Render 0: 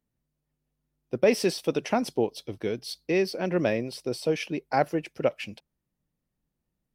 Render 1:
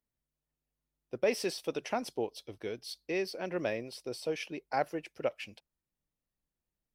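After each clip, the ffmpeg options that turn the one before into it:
ffmpeg -i in.wav -af "equalizer=frequency=170:width_type=o:width=1.9:gain=-7.5,volume=-6dB" out.wav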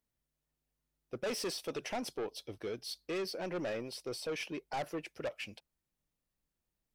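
ffmpeg -i in.wav -af "asoftclip=type=tanh:threshold=-34.5dB,volume=2dB" out.wav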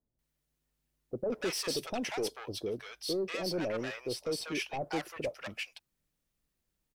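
ffmpeg -i in.wav -filter_complex "[0:a]acrossover=split=810[link_01][link_02];[link_02]adelay=190[link_03];[link_01][link_03]amix=inputs=2:normalize=0,volume=4.5dB" out.wav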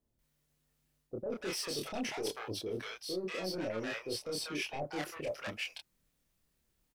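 ffmpeg -i in.wav -filter_complex "[0:a]areverse,acompressor=threshold=-40dB:ratio=6,areverse,asplit=2[link_01][link_02];[link_02]adelay=27,volume=-2.5dB[link_03];[link_01][link_03]amix=inputs=2:normalize=0,volume=3dB" out.wav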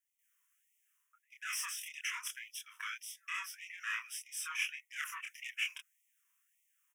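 ffmpeg -i in.wav -af "asuperstop=centerf=4300:order=4:qfactor=1.5,afftfilt=real='re*gte(b*sr/1024,910*pow(1900/910,0.5+0.5*sin(2*PI*1.7*pts/sr)))':imag='im*gte(b*sr/1024,910*pow(1900/910,0.5+0.5*sin(2*PI*1.7*pts/sr)))':win_size=1024:overlap=0.75,volume=4.5dB" out.wav

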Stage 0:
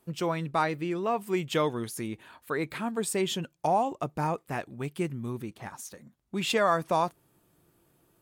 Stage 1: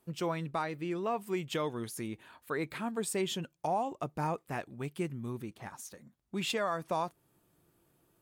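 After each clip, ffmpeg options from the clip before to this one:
ffmpeg -i in.wav -af "alimiter=limit=-18.5dB:level=0:latency=1:release=288,volume=-4dB" out.wav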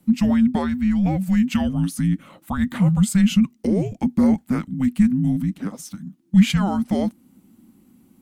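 ffmpeg -i in.wav -af "lowshelf=frequency=270:width_type=q:width=3:gain=9.5,afreqshift=-390,volume=8.5dB" out.wav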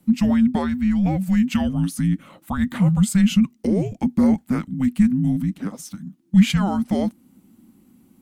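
ffmpeg -i in.wav -af anull out.wav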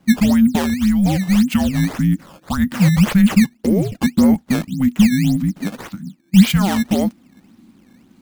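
ffmpeg -i in.wav -af "acrusher=samples=13:mix=1:aa=0.000001:lfo=1:lforange=20.8:lforate=1.8,volume=4dB" out.wav

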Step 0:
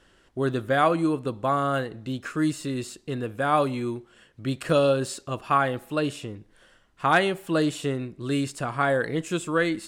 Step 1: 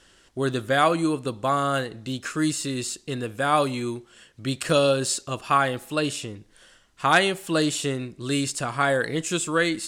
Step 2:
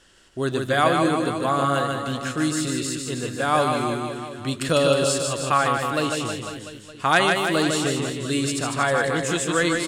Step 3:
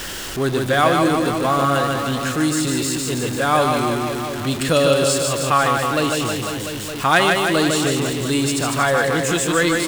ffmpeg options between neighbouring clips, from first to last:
ffmpeg -i in.wav -af "equalizer=frequency=6900:width=0.44:gain=10.5" out.wav
ffmpeg -i in.wav -af "aecho=1:1:150|315|496.5|696.2|915.8:0.631|0.398|0.251|0.158|0.1" out.wav
ffmpeg -i in.wav -af "aeval=exprs='val(0)+0.5*0.0501*sgn(val(0))':channel_layout=same,volume=2dB" out.wav

